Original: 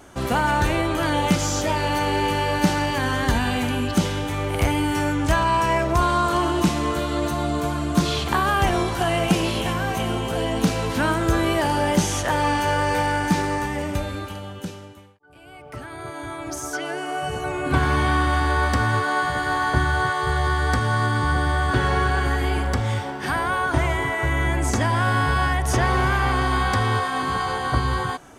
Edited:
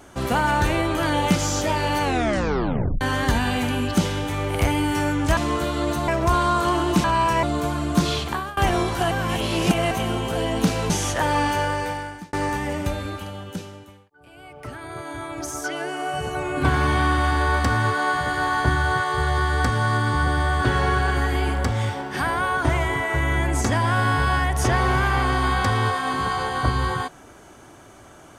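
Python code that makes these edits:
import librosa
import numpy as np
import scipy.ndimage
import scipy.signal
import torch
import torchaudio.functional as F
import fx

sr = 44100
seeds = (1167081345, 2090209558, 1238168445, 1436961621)

y = fx.edit(x, sr, fx.tape_stop(start_s=2.02, length_s=0.99),
    fx.swap(start_s=5.37, length_s=0.39, other_s=6.72, other_length_s=0.71),
    fx.fade_out_to(start_s=8.13, length_s=0.44, floor_db=-21.5),
    fx.reverse_span(start_s=9.11, length_s=0.8),
    fx.cut(start_s=10.9, length_s=1.09),
    fx.fade_out_span(start_s=12.57, length_s=0.85), tone=tone)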